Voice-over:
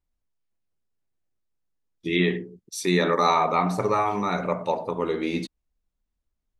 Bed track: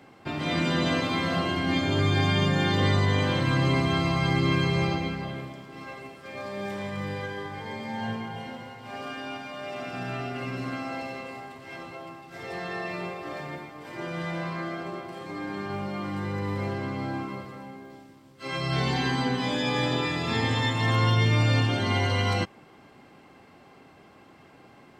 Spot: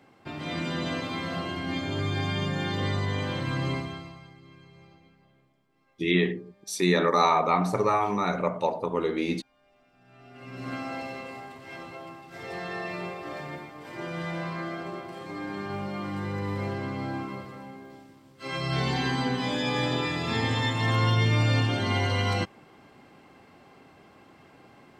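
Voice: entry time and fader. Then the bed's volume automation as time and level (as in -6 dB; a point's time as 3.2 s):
3.95 s, -1.0 dB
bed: 3.72 s -5.5 dB
4.37 s -28.5 dB
9.97 s -28.5 dB
10.72 s -1 dB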